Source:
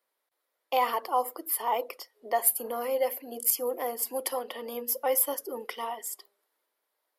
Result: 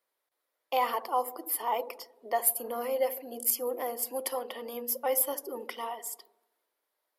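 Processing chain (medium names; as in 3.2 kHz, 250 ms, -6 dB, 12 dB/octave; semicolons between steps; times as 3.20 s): feedback echo behind a low-pass 76 ms, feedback 56%, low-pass 590 Hz, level -11 dB; trim -2 dB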